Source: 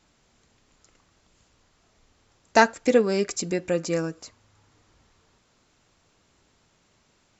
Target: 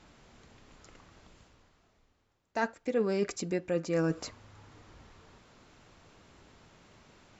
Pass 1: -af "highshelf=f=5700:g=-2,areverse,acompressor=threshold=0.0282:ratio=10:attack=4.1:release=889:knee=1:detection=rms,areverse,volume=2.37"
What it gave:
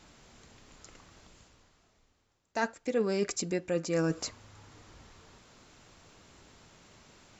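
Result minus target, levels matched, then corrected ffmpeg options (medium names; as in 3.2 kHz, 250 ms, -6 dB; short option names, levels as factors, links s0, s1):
8 kHz band +6.0 dB
-af "highshelf=f=5700:g=-13.5,areverse,acompressor=threshold=0.0282:ratio=10:attack=4.1:release=889:knee=1:detection=rms,areverse,volume=2.37"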